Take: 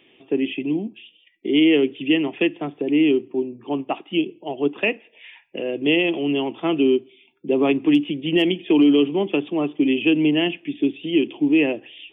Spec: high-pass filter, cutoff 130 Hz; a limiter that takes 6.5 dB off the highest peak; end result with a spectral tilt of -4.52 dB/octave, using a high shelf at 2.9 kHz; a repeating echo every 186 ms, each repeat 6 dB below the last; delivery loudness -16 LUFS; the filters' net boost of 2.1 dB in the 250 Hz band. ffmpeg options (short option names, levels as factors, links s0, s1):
-af "highpass=130,equalizer=f=250:t=o:g=3,highshelf=f=2900:g=-5,alimiter=limit=0.251:level=0:latency=1,aecho=1:1:186|372|558|744|930|1116:0.501|0.251|0.125|0.0626|0.0313|0.0157,volume=1.78"